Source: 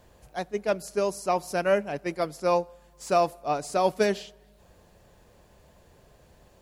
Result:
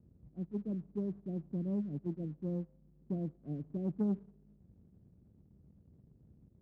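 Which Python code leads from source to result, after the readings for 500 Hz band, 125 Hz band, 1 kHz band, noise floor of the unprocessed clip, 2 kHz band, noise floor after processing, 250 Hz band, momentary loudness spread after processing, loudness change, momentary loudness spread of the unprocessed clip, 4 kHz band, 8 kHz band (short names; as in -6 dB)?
-19.5 dB, +1.5 dB, -32.5 dB, -58 dBFS, under -35 dB, -66 dBFS, -1.0 dB, 7 LU, -11.5 dB, 12 LU, under -35 dB, under -40 dB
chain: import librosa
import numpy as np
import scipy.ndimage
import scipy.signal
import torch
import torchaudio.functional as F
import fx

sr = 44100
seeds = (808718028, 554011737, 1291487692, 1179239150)

y = scipy.signal.sosfilt(scipy.signal.cheby2(4, 70, 1200.0, 'lowpass', fs=sr, output='sos'), x)
y = fx.leveller(y, sr, passes=1)
y = scipy.signal.sosfilt(scipy.signal.butter(2, 84.0, 'highpass', fs=sr, output='sos'), y)
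y = F.gain(torch.from_numpy(y), -1.5).numpy()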